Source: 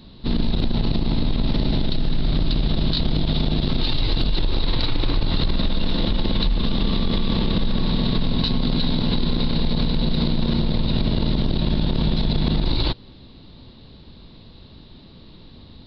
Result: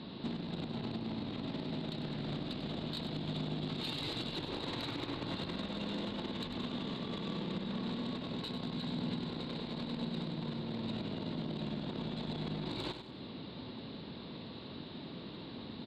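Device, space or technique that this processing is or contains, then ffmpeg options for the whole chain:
AM radio: -filter_complex "[0:a]asettb=1/sr,asplit=3[link_01][link_02][link_03];[link_01]atrim=end=3.684[link_04];[link_02]atrim=start=3.68:end=4.34,asetpts=PTS-STARTPTS,afade=type=in:duration=0.004:curve=qsin,afade=type=out:start_time=0.656:duration=0.004:curve=qsin,highshelf=frequency=4100:gain=7.5[link_05];[link_03]atrim=start=4.336[link_06];[link_04][link_05]acrossfade=duration=0.004:curve1=hsin:curve2=qsin[link_07];[link_07][link_06]acrossfade=duration=0.004:curve1=qsin:curve2=hsin,highpass=180,lowpass=3300,acompressor=threshold=-38dB:ratio=8,asoftclip=type=tanh:threshold=-34dB,aecho=1:1:97|194|291|388:0.376|0.15|0.0601|0.0241,volume=3dB"

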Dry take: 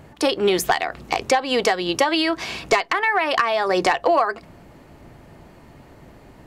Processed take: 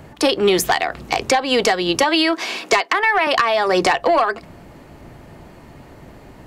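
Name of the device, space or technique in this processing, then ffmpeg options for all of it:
one-band saturation: -filter_complex "[0:a]asettb=1/sr,asplit=3[link_01][link_02][link_03];[link_01]atrim=end=2.034[link_04];[link_02]atrim=start=2.03:end=3.27,asetpts=PTS-STARTPTS,afade=type=in:duration=0.004:curve=qsin,afade=type=out:start_time=1.236:duration=0.004:curve=qsin,highpass=frequency=250:width=0.5412,highpass=frequency=250:width=1.3066[link_05];[link_03]atrim=start=3.266[link_06];[link_04][link_05]acrossfade=duration=0.004:curve1=hsin:curve2=qsin[link_07];[link_07][link_06]acrossfade=duration=0.004:curve1=qsin:curve2=hsin,acrossover=split=260|2000[link_08][link_09][link_10];[link_09]asoftclip=type=tanh:threshold=-15dB[link_11];[link_08][link_11][link_10]amix=inputs=3:normalize=0,volume=4.5dB"

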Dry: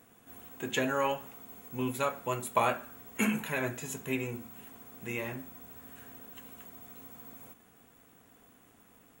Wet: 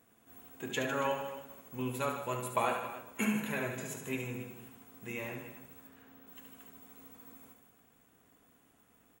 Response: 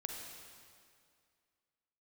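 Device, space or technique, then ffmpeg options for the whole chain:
keyed gated reverb: -filter_complex "[0:a]asettb=1/sr,asplit=3[link_01][link_02][link_03];[link_01]atrim=end=5.874[link_04];[link_02]atrim=start=5.87:end=6.27,asetpts=PTS-STARTPTS,afade=type=in:duration=0.004:curve=qsin,afade=type=out:start_time=0.396:duration=0.004:curve=qsin,equalizer=frequency=9700:width_type=o:width=1.3:gain=-13[link_05];[link_03]atrim=start=6.266[link_06];[link_04][link_05]acrossfade=duration=0.004:curve1=hsin:curve2=qsin[link_07];[link_07][link_06]acrossfade=duration=0.004:curve1=qsin:curve2=hsin,asplit=3[link_08][link_09][link_10];[1:a]atrim=start_sample=2205[link_11];[link_09][link_11]afir=irnorm=-1:irlink=0[link_12];[link_10]apad=whole_len=405742[link_13];[link_12][link_13]sidechaingate=range=-33dB:threshold=-48dB:ratio=16:detection=peak,volume=-6dB[link_14];[link_08][link_14]amix=inputs=2:normalize=0,aecho=1:1:71|152|279:0.447|0.299|0.188,volume=-7dB"

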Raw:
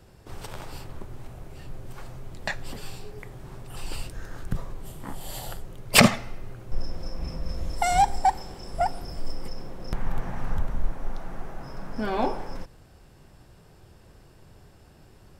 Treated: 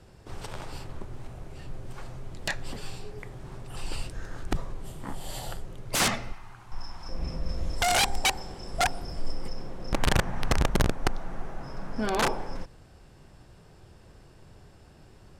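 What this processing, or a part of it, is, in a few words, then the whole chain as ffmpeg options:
overflowing digital effects unit: -filter_complex "[0:a]asettb=1/sr,asplit=3[link_01][link_02][link_03];[link_01]atrim=end=6.324[link_04];[link_02]atrim=start=6.32:end=7.09,asetpts=PTS-STARTPTS,afade=type=in:duration=0.004:curve=qsin,afade=type=out:start_time=0.766:duration=0.004:curve=qsin,lowshelf=frequency=690:width_type=q:width=3:gain=-9[link_05];[link_03]atrim=start=7.086[link_06];[link_04][link_05]acrossfade=duration=0.004:curve1=hsin:curve2=qsin[link_07];[link_07][link_06]acrossfade=duration=0.004:curve1=qsin:curve2=hsin,aeval=exprs='(mod(7.08*val(0)+1,2)-1)/7.08':channel_layout=same,lowpass=10000"

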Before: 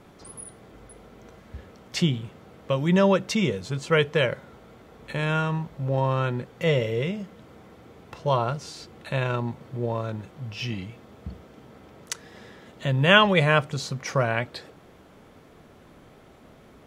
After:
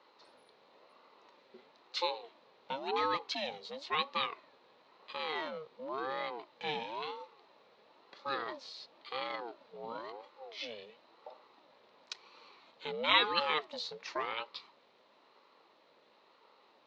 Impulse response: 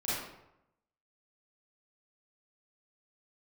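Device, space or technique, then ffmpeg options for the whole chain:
voice changer toy: -af "aeval=exprs='val(0)*sin(2*PI*500*n/s+500*0.4/0.97*sin(2*PI*0.97*n/s))':channel_layout=same,highpass=480,equalizer=frequency=730:width_type=q:width=4:gain=-8,equalizer=frequency=1600:width_type=q:width=4:gain=-7,equalizer=frequency=4100:width_type=q:width=4:gain=9,lowpass=frequency=5000:width=0.5412,lowpass=frequency=5000:width=1.3066,volume=-6.5dB"

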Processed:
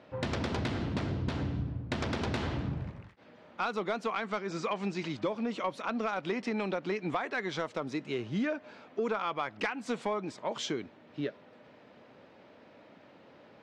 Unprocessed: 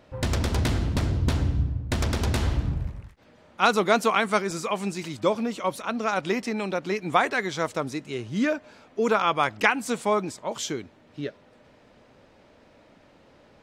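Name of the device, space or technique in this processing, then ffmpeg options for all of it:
AM radio: -filter_complex "[0:a]asettb=1/sr,asplit=3[link_01][link_02][link_03];[link_01]atrim=end=4.164[link_04];[link_02]atrim=start=4.16:end=5.26,asetpts=PTS-STARTPTS,afade=type=in:duration=0.004:curve=qsin,afade=type=out:start_time=1.096:duration=0.004:curve=qsin,lowpass=frequency=7500:width=0.5412,lowpass=frequency=7500:width=1.3066[link_05];[link_03]atrim=start=5.256[link_06];[link_04][link_05]acrossfade=duration=0.004:curve1=hsin:curve2=qsin[link_07];[link_07][link_06]acrossfade=duration=0.004:curve1=qsin:curve2=hsin,highpass=140,lowpass=4000,acompressor=threshold=-28dB:ratio=6,asoftclip=type=tanh:threshold=-20dB"

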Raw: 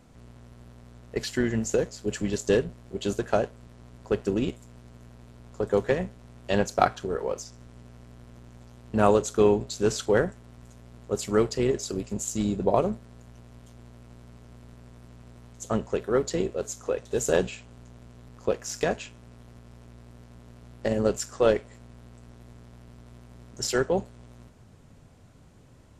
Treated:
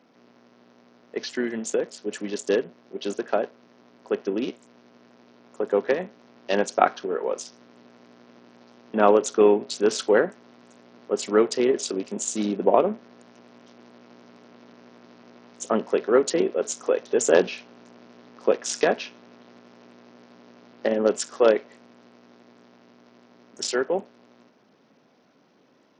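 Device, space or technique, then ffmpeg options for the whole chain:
Bluetooth headset: -af "highpass=frequency=230:width=0.5412,highpass=frequency=230:width=1.3066,dynaudnorm=framelen=550:gausssize=21:maxgain=11dB,aresample=16000,aresample=44100" -ar 48000 -c:a sbc -b:a 64k

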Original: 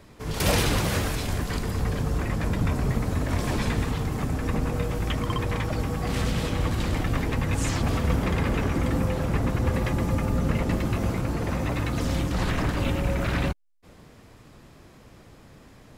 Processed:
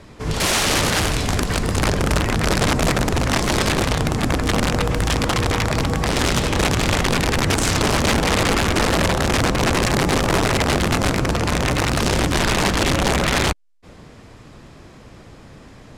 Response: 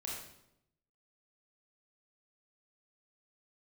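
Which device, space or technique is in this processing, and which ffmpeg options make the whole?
overflowing digital effects unit: -af "aeval=exprs='(mod(9.44*val(0)+1,2)-1)/9.44':channel_layout=same,lowpass=8900,volume=7.5dB"

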